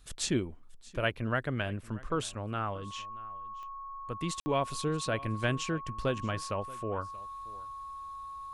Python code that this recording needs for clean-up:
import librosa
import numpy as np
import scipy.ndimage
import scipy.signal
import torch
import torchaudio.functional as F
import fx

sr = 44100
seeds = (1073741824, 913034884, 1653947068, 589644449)

y = fx.fix_declick_ar(x, sr, threshold=10.0)
y = fx.notch(y, sr, hz=1100.0, q=30.0)
y = fx.fix_ambience(y, sr, seeds[0], print_start_s=0.47, print_end_s=0.97, start_s=4.4, end_s=4.46)
y = fx.fix_echo_inverse(y, sr, delay_ms=630, level_db=-20.5)